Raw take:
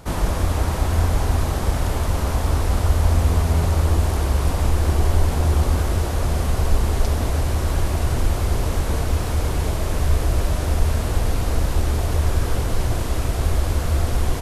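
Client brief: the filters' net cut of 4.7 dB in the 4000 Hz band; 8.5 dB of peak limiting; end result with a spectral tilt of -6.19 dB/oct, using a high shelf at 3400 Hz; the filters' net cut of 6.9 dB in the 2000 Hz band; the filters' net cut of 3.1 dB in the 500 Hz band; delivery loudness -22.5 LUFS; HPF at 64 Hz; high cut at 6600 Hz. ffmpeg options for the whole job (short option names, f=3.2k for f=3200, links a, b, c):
-af "highpass=64,lowpass=6.6k,equalizer=f=500:t=o:g=-3.5,equalizer=f=2k:t=o:g=-9,highshelf=f=3.4k:g=4,equalizer=f=4k:t=o:g=-5.5,volume=5dB,alimiter=limit=-13dB:level=0:latency=1"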